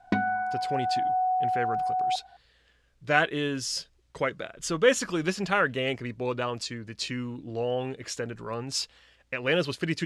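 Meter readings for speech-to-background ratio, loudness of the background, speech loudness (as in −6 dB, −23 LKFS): −1.5 dB, −28.0 LKFS, −29.5 LKFS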